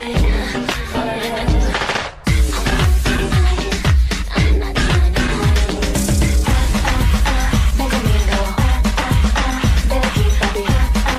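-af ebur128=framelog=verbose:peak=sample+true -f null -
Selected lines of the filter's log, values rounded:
Integrated loudness:
  I:         -16.9 LUFS
  Threshold: -26.9 LUFS
Loudness range:
  LRA:         1.3 LU
  Threshold: -36.7 LUFS
  LRA low:   -17.6 LUFS
  LRA high:  -16.3 LUFS
Sample peak:
  Peak:       -5.1 dBFS
True peak:
  Peak:       -5.1 dBFS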